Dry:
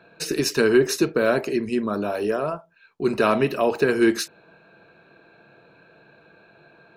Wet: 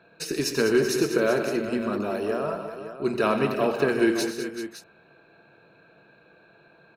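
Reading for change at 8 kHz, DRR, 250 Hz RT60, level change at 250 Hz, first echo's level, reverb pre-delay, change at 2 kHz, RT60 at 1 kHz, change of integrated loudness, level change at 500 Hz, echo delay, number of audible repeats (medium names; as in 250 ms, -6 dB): -2.5 dB, no reverb, no reverb, -2.5 dB, -13.0 dB, no reverb, -3.0 dB, no reverb, -3.0 dB, -3.0 dB, 88 ms, 5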